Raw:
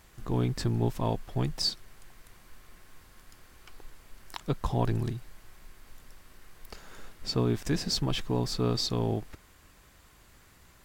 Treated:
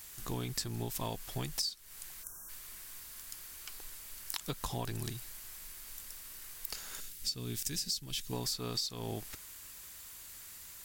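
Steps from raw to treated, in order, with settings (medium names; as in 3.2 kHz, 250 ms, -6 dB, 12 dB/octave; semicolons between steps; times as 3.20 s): pre-emphasis filter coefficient 0.9; 2.24–2.49 s: spectral selection erased 1.7–5.4 kHz; 7.00–8.33 s: peaking EQ 860 Hz -13.5 dB 2.3 oct; compression 16:1, threshold -46 dBFS, peak gain reduction 18 dB; trim +13.5 dB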